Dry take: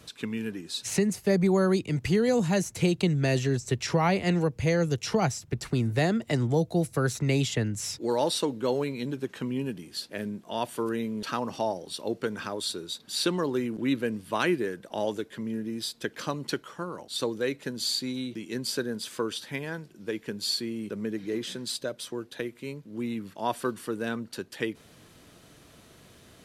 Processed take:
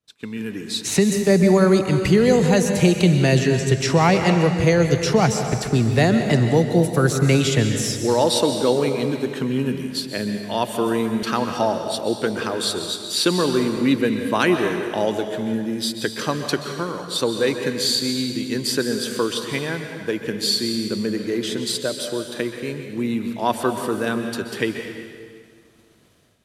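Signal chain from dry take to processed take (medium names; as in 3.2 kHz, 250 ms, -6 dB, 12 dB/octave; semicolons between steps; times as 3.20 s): level rider gain up to 8 dB; expander -36 dBFS; plate-style reverb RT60 1.9 s, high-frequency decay 0.9×, pre-delay 115 ms, DRR 5.5 dB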